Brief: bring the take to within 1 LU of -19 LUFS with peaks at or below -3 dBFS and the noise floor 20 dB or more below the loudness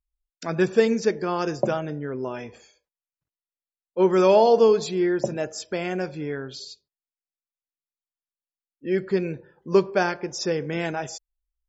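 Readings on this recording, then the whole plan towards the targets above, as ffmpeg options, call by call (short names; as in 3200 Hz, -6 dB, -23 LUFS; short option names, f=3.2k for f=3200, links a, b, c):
loudness -23.5 LUFS; peak -6.0 dBFS; loudness target -19.0 LUFS
-> -af "volume=4.5dB,alimiter=limit=-3dB:level=0:latency=1"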